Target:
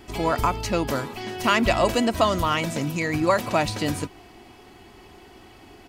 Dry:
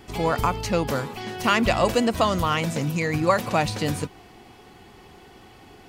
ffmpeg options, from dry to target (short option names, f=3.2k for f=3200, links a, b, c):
-af "aecho=1:1:3.1:0.33"